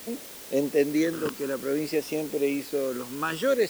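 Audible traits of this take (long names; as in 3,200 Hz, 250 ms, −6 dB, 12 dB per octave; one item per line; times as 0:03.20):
phaser sweep stages 12, 0.55 Hz, lowest notch 660–1,600 Hz
a quantiser's noise floor 8 bits, dither triangular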